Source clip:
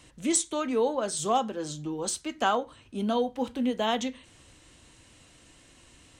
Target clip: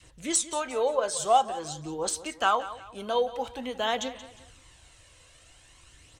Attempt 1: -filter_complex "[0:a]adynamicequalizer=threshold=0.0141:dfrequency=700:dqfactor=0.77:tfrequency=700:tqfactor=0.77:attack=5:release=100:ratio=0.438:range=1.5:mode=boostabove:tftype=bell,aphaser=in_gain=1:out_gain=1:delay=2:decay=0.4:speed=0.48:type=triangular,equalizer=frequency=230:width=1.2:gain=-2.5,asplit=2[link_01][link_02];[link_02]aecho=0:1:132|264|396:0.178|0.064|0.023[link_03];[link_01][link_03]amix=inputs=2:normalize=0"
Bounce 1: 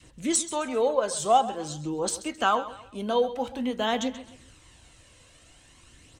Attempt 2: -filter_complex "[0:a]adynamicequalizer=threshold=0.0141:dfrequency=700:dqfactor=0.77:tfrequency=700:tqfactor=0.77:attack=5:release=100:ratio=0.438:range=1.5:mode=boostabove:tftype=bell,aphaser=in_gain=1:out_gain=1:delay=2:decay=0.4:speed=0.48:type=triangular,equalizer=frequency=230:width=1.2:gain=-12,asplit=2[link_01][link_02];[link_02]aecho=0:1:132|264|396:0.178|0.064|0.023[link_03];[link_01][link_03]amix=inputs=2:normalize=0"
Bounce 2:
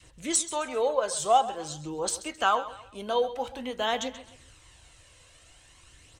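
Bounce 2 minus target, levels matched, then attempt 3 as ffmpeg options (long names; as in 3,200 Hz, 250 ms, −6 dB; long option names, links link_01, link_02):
echo 46 ms early
-filter_complex "[0:a]adynamicequalizer=threshold=0.0141:dfrequency=700:dqfactor=0.77:tfrequency=700:tqfactor=0.77:attack=5:release=100:ratio=0.438:range=1.5:mode=boostabove:tftype=bell,aphaser=in_gain=1:out_gain=1:delay=2:decay=0.4:speed=0.48:type=triangular,equalizer=frequency=230:width=1.2:gain=-12,asplit=2[link_01][link_02];[link_02]aecho=0:1:178|356|534:0.178|0.064|0.023[link_03];[link_01][link_03]amix=inputs=2:normalize=0"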